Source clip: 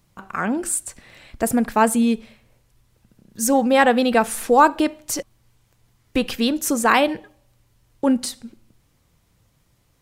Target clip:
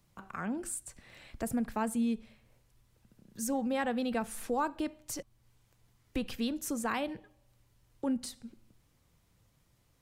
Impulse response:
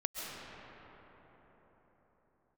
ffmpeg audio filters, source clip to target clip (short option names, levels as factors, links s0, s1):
-filter_complex "[0:a]acrossover=split=190[s0][s1];[s1]acompressor=threshold=0.00708:ratio=1.5[s2];[s0][s2]amix=inputs=2:normalize=0,volume=0.447"